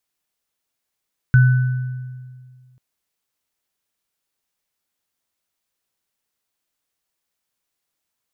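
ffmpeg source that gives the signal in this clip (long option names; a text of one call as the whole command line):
ffmpeg -f lavfi -i "aevalsrc='0.447*pow(10,-3*t/1.98)*sin(2*PI*127*t)+0.119*pow(10,-3*t/1.24)*sin(2*PI*1500*t)':duration=1.44:sample_rate=44100" out.wav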